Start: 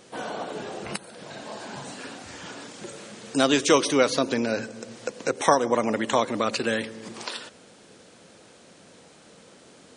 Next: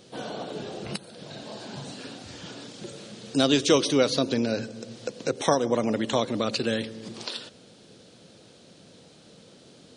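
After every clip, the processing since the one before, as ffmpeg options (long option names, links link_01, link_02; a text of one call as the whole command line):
ffmpeg -i in.wav -af "equalizer=frequency=125:width_type=o:width=1:gain=5,equalizer=frequency=1000:width_type=o:width=1:gain=-6,equalizer=frequency=2000:width_type=o:width=1:gain=-6,equalizer=frequency=4000:width_type=o:width=1:gain=5,equalizer=frequency=8000:width_type=o:width=1:gain=-6" out.wav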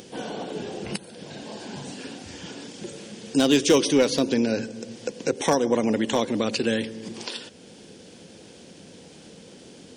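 ffmpeg -i in.wav -af "volume=13.5dB,asoftclip=hard,volume=-13.5dB,equalizer=frequency=125:width_type=o:width=0.33:gain=-9,equalizer=frequency=630:width_type=o:width=0.33:gain=-6,equalizer=frequency=1250:width_type=o:width=0.33:gain=-8,equalizer=frequency=4000:width_type=o:width=0.33:gain=-8,acompressor=mode=upward:threshold=-44dB:ratio=2.5,volume=4dB" out.wav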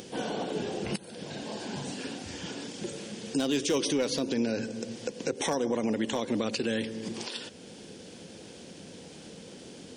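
ffmpeg -i in.wav -af "alimiter=limit=-19.5dB:level=0:latency=1:release=170" out.wav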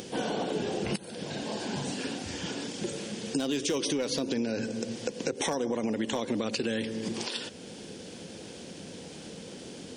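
ffmpeg -i in.wav -af "acompressor=threshold=-29dB:ratio=6,volume=3dB" out.wav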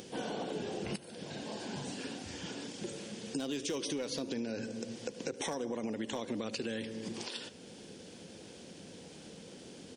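ffmpeg -i in.wav -af "aecho=1:1:74|148|222:0.1|0.037|0.0137,volume=-7dB" out.wav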